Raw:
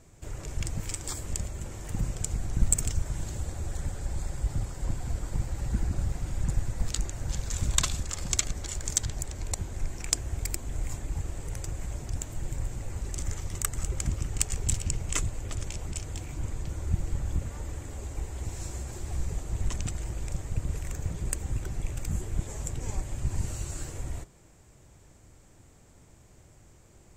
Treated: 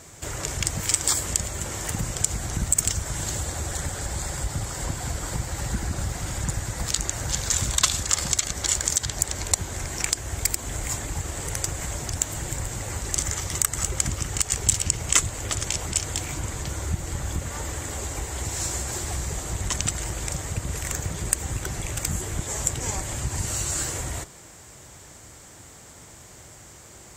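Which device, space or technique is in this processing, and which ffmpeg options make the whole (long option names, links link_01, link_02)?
mastering chain: -af "highpass=54,equalizer=frequency=2500:width_type=o:width=0.26:gain=-4,acompressor=threshold=-37dB:ratio=1.5,tiltshelf=frequency=630:gain=-5.5,alimiter=level_in=12.5dB:limit=-1dB:release=50:level=0:latency=1,volume=-1dB"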